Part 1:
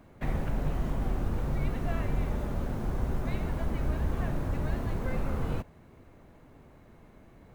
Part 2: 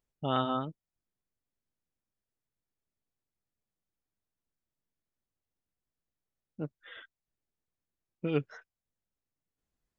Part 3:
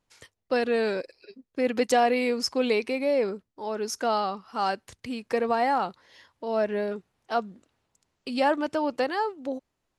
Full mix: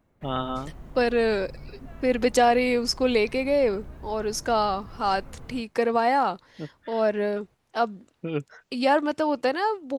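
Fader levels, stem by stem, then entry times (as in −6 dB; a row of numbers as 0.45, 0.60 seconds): −12.5, +1.0, +2.5 decibels; 0.00, 0.00, 0.45 seconds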